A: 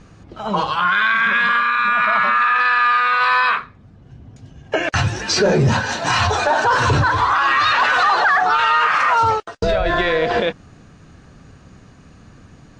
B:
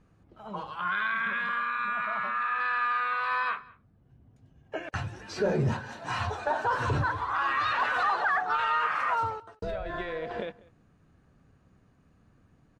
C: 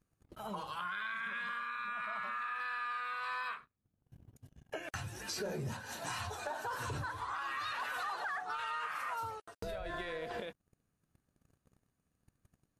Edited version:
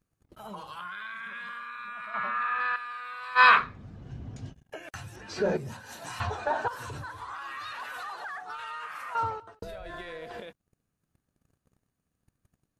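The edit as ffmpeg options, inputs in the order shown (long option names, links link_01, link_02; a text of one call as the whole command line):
ffmpeg -i take0.wav -i take1.wav -i take2.wav -filter_complex "[1:a]asplit=4[link_01][link_02][link_03][link_04];[2:a]asplit=6[link_05][link_06][link_07][link_08][link_09][link_10];[link_05]atrim=end=2.142[link_11];[link_01]atrim=start=2.138:end=2.762[link_12];[link_06]atrim=start=2.758:end=3.41[link_13];[0:a]atrim=start=3.35:end=4.55[link_14];[link_07]atrim=start=4.49:end=5.162[link_15];[link_02]atrim=start=5.158:end=5.572[link_16];[link_08]atrim=start=5.568:end=6.202[link_17];[link_03]atrim=start=6.198:end=6.682[link_18];[link_09]atrim=start=6.678:end=9.152[link_19];[link_04]atrim=start=9.148:end=9.632[link_20];[link_10]atrim=start=9.628[link_21];[link_11][link_12]acrossfade=duration=0.004:curve1=hsin:curve2=hsin[link_22];[link_22][link_13]acrossfade=duration=0.004:curve1=hsin:curve2=hsin[link_23];[link_23][link_14]acrossfade=duration=0.06:curve1=tri:curve2=tri[link_24];[link_24][link_15]acrossfade=duration=0.06:curve1=tri:curve2=tri[link_25];[link_25][link_16]acrossfade=duration=0.004:curve1=hsin:curve2=hsin[link_26];[link_26][link_17]acrossfade=duration=0.004:curve1=hsin:curve2=hsin[link_27];[link_27][link_18]acrossfade=duration=0.004:curve1=hsin:curve2=hsin[link_28];[link_28][link_19]acrossfade=duration=0.004:curve1=hsin:curve2=hsin[link_29];[link_29][link_20]acrossfade=duration=0.004:curve1=hsin:curve2=hsin[link_30];[link_30][link_21]acrossfade=duration=0.004:curve1=hsin:curve2=hsin" out.wav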